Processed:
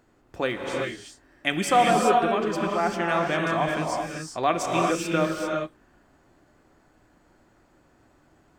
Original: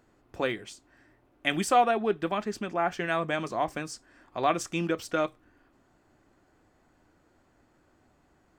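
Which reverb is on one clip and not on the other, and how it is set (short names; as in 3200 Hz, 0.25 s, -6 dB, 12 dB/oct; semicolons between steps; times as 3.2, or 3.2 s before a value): non-linear reverb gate 0.42 s rising, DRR 0 dB; gain +2 dB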